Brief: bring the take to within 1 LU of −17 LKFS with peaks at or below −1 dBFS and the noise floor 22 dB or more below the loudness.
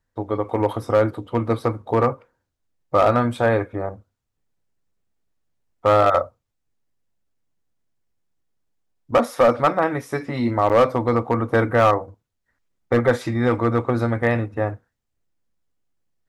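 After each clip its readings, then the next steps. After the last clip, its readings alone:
share of clipped samples 1.1%; peaks flattened at −9.0 dBFS; number of dropouts 1; longest dropout 8.3 ms; integrated loudness −20.5 LKFS; sample peak −9.0 dBFS; target loudness −17.0 LKFS
→ clipped peaks rebuilt −9 dBFS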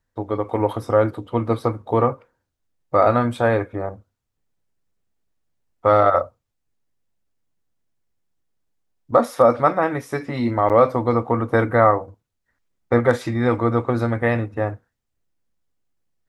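share of clipped samples 0.0%; number of dropouts 1; longest dropout 8.3 ms
→ repair the gap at 0:10.69, 8.3 ms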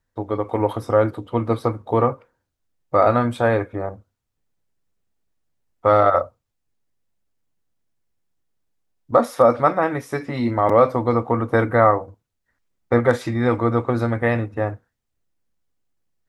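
number of dropouts 0; integrated loudness −20.0 LKFS; sample peak −3.0 dBFS; target loudness −17.0 LKFS
→ level +3 dB
brickwall limiter −1 dBFS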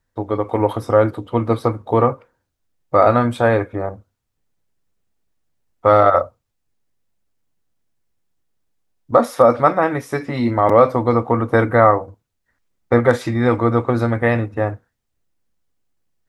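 integrated loudness −17.0 LKFS; sample peak −1.0 dBFS; background noise floor −74 dBFS

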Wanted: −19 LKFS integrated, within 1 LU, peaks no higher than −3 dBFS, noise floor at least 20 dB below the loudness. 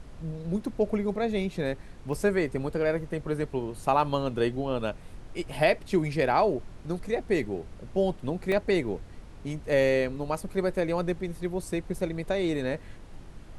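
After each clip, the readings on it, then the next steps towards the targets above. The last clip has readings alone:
number of dropouts 2; longest dropout 1.6 ms; background noise floor −46 dBFS; target noise floor −49 dBFS; integrated loudness −29.0 LKFS; sample peak −9.0 dBFS; target loudness −19.0 LKFS
→ repair the gap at 0:02.13/0:08.52, 1.6 ms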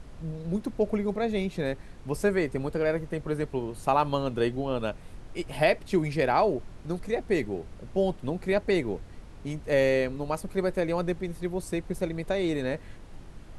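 number of dropouts 0; background noise floor −46 dBFS; target noise floor −49 dBFS
→ noise reduction from a noise print 6 dB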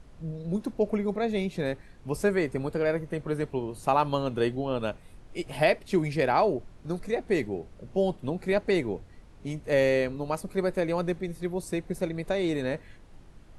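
background noise floor −51 dBFS; integrated loudness −29.0 LKFS; sample peak −9.0 dBFS; target loudness −19.0 LKFS
→ level +10 dB
brickwall limiter −3 dBFS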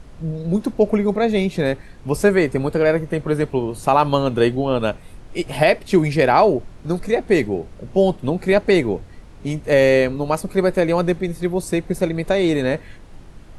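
integrated loudness −19.5 LKFS; sample peak −3.0 dBFS; background noise floor −41 dBFS

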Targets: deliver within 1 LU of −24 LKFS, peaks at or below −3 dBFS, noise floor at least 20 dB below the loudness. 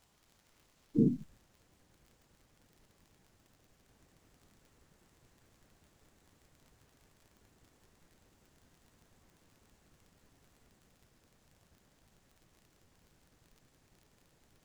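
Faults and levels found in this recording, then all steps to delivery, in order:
crackle rate 34 per second; integrated loudness −32.5 LKFS; sample peak −16.0 dBFS; target loudness −24.0 LKFS
→ click removal
level +8.5 dB

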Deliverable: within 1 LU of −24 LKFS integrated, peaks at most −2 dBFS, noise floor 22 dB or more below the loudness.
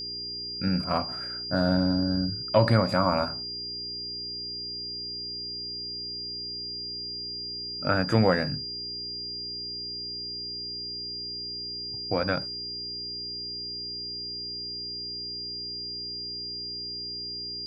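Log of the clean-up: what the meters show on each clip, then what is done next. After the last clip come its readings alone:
mains hum 60 Hz; hum harmonics up to 420 Hz; level of the hum −46 dBFS; interfering tone 4,800 Hz; level of the tone −33 dBFS; integrated loudness −29.5 LKFS; sample peak −8.0 dBFS; target loudness −24.0 LKFS
→ hum removal 60 Hz, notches 7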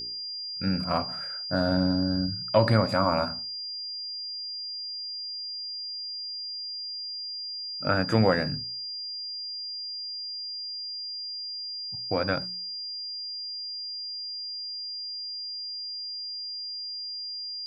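mains hum none found; interfering tone 4,800 Hz; level of the tone −33 dBFS
→ notch filter 4,800 Hz, Q 30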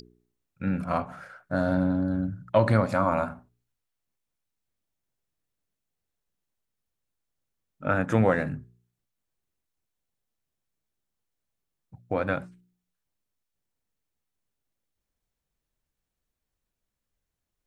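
interfering tone none found; integrated loudness −27.0 LKFS; sample peak −8.5 dBFS; target loudness −24.0 LKFS
→ level +3 dB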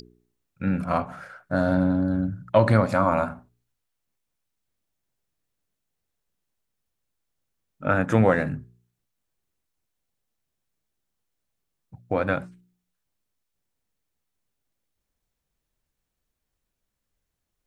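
integrated loudness −24.0 LKFS; sample peak −5.5 dBFS; background noise floor −82 dBFS

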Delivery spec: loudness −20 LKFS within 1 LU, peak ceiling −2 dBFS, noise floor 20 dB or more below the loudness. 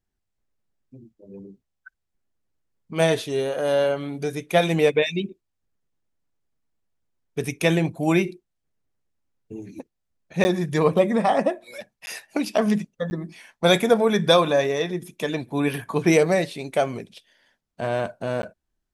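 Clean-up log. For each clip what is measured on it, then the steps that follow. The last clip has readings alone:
number of dropouts 4; longest dropout 10 ms; integrated loudness −22.5 LKFS; sample peak −4.5 dBFS; target loudness −20.0 LKFS
→ repair the gap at 0:10.44/0:12.06/0:13.10/0:18.42, 10 ms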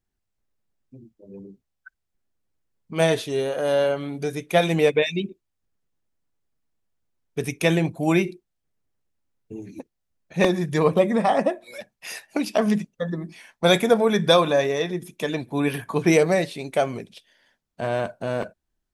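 number of dropouts 0; integrated loudness −22.5 LKFS; sample peak −3.0 dBFS; target loudness −20.0 LKFS
→ level +2.5 dB
brickwall limiter −2 dBFS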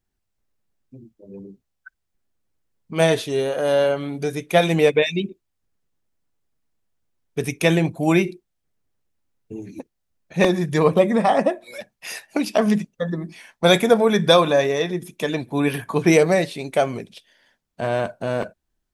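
integrated loudness −20.0 LKFS; sample peak −2.0 dBFS; background noise floor −77 dBFS

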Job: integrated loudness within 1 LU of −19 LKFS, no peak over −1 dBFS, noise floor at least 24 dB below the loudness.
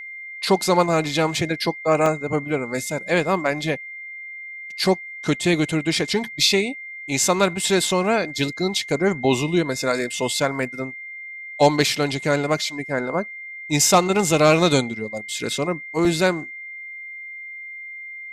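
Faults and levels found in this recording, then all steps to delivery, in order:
number of dropouts 2; longest dropout 1.8 ms; interfering tone 2,100 Hz; level of the tone −33 dBFS; integrated loudness −21.0 LKFS; sample peak −4.0 dBFS; target loudness −19.0 LKFS
→ repair the gap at 0:02.06/0:16.05, 1.8 ms
notch filter 2,100 Hz, Q 30
level +2 dB

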